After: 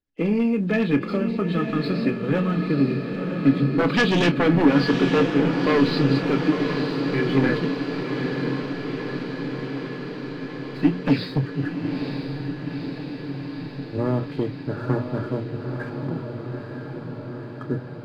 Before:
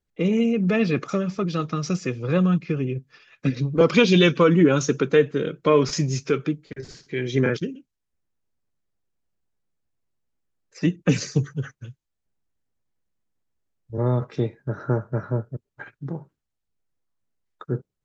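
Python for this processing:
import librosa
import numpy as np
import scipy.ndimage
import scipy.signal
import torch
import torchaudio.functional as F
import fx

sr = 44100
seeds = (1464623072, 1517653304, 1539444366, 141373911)

p1 = fx.freq_compress(x, sr, knee_hz=2500.0, ratio=1.5)
p2 = 10.0 ** (-13.5 / 20.0) * (np.abs((p1 / 10.0 ** (-13.5 / 20.0) + 3.0) % 4.0 - 2.0) - 1.0)
p3 = scipy.signal.sosfilt(scipy.signal.butter(2, 6600.0, 'lowpass', fs=sr, output='sos'), p2)
p4 = fx.hum_notches(p3, sr, base_hz=60, count=3)
p5 = fx.leveller(p4, sr, passes=1)
p6 = fx.doubler(p5, sr, ms=29.0, db=-12.0)
p7 = fx.small_body(p6, sr, hz=(280.0, 1700.0), ring_ms=100, db=12)
p8 = p7 + fx.echo_diffused(p7, sr, ms=939, feedback_pct=73, wet_db=-6.0, dry=0)
y = F.gain(torch.from_numpy(p8), -4.0).numpy()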